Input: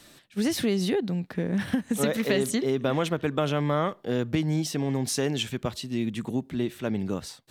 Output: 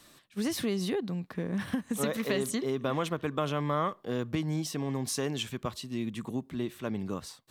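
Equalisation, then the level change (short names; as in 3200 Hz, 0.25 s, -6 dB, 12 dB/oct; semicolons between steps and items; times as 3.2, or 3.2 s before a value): bell 1100 Hz +9 dB 0.26 oct; high shelf 8400 Hz +3.5 dB; -5.5 dB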